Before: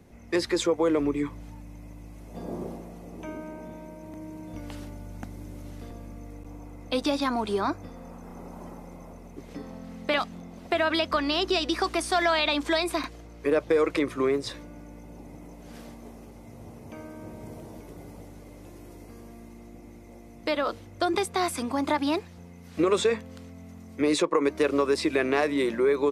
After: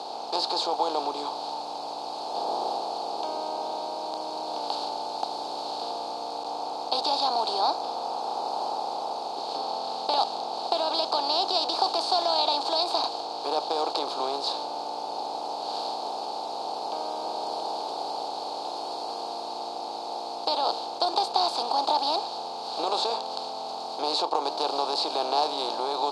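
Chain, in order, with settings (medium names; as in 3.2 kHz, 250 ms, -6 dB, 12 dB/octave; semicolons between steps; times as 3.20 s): spectral levelling over time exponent 0.4; two resonant band-passes 1.9 kHz, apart 2.4 oct; trim +5.5 dB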